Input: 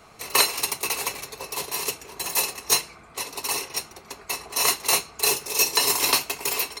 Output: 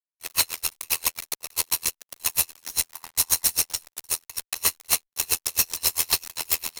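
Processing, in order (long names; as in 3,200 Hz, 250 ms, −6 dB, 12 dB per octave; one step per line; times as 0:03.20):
0:02.96–0:03.43: healed spectral selection 660–2,100 Hz after
in parallel at −1 dB: downward compressor 20 to 1, threshold −33 dBFS, peak gain reduction 20.5 dB
0:02.59–0:03.81: on the sum: bass and treble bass −1 dB, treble +9 dB
on a send: single-tap delay 599 ms −11.5 dB
on the sum: ring modulation 41 Hz
spectral tilt +3 dB per octave
fuzz pedal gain 22 dB, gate −25 dBFS
tremolo with a sine in dB 7.5 Hz, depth 34 dB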